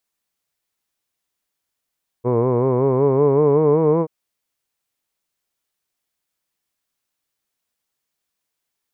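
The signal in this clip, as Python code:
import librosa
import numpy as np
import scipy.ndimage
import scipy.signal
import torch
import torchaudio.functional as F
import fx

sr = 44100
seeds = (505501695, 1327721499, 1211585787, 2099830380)

y = fx.vowel(sr, seeds[0], length_s=1.83, word='hood', hz=118.0, glide_st=5.5, vibrato_hz=5.3, vibrato_st=0.9)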